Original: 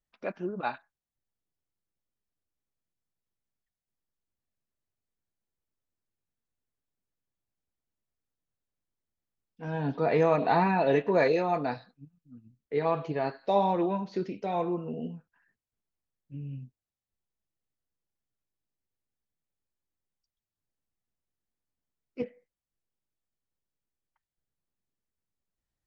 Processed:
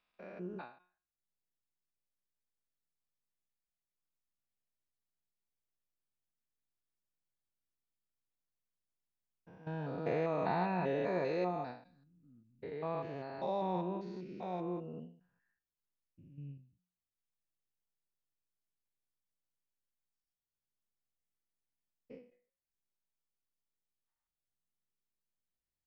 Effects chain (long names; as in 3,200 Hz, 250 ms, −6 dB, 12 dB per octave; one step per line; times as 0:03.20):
spectrum averaged block by block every 200 ms
tuned comb filter 180 Hz, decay 0.35 s, harmonics all, mix 50%
every ending faded ahead of time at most 130 dB per second
level −2 dB